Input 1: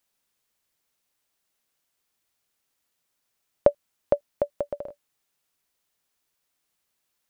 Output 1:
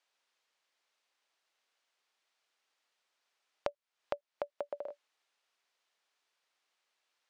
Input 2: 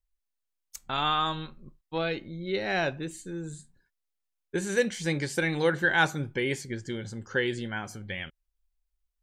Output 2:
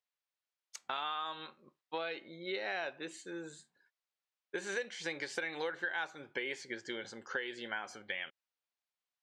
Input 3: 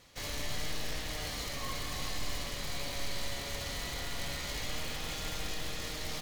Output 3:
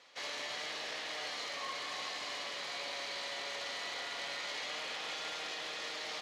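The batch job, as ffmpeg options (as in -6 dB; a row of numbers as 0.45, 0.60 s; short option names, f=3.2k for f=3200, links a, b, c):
-af "highpass=530,lowpass=4.7k,acompressor=threshold=-37dB:ratio=6,volume=2dB"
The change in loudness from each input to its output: -14.5, -10.5, -1.0 LU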